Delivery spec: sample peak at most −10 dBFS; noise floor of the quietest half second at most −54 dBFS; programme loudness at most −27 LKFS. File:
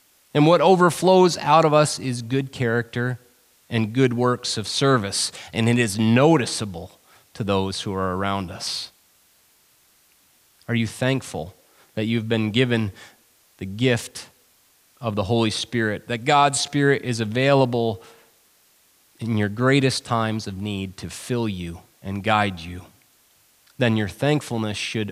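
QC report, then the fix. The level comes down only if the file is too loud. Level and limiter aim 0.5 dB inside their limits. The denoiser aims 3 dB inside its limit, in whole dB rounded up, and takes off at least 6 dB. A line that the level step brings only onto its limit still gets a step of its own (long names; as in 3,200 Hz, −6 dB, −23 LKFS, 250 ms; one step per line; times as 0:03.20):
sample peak −4.0 dBFS: out of spec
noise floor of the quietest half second −59 dBFS: in spec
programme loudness −21.5 LKFS: out of spec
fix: level −6 dB
brickwall limiter −10.5 dBFS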